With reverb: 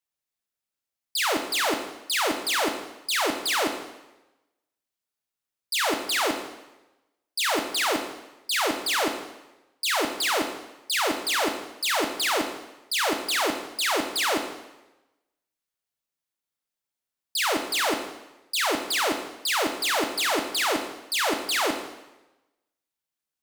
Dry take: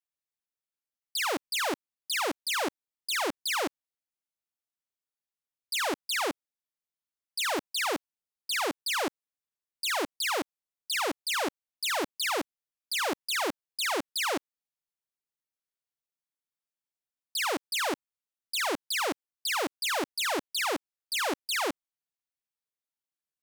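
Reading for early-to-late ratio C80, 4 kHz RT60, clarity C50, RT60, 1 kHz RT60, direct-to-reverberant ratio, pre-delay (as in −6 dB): 10.0 dB, 0.95 s, 8.0 dB, 1.0 s, 1.0 s, 5.0 dB, 4 ms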